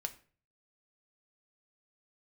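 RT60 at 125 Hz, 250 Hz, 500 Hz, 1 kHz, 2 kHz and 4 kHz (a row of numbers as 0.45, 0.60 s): 0.70, 0.50, 0.45, 0.40, 0.40, 0.35 s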